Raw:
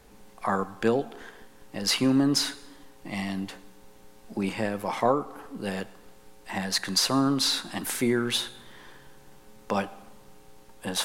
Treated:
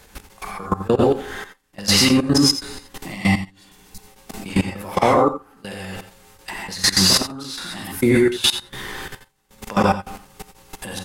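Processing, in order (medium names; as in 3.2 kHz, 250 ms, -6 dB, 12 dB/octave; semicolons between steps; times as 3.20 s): trance gate "x.x.x.xxx...x" 101 bpm -24 dB; high-pass 48 Hz 6 dB/octave; gated-style reverb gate 150 ms rising, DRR -6.5 dB; in parallel at 0 dB: compression 5:1, threshold -29 dBFS, peak gain reduction 14.5 dB; on the sum: bass shelf 110 Hz +11.5 dB; level held to a coarse grid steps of 19 dB; spectral replace 3.62–3.99 s, 240–3800 Hz; on a send: multi-tap echo 85/96 ms -13.5/-19.5 dB; on the sum: tape noise reduction on one side only encoder only; trim +4.5 dB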